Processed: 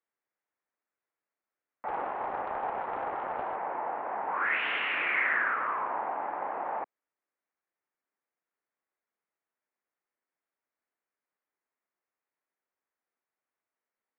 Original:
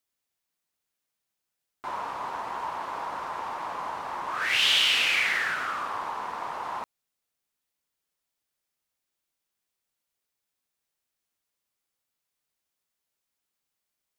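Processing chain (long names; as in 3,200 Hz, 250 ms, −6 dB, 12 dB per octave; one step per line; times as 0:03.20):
single-sideband voice off tune −150 Hz 410–2,300 Hz
0:01.88–0:03.56: highs frequency-modulated by the lows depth 0.31 ms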